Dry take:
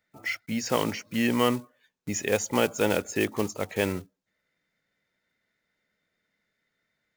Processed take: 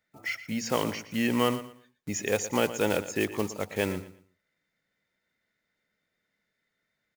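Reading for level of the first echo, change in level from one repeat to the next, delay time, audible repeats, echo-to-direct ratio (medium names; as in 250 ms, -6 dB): -14.0 dB, -11.5 dB, 117 ms, 2, -13.5 dB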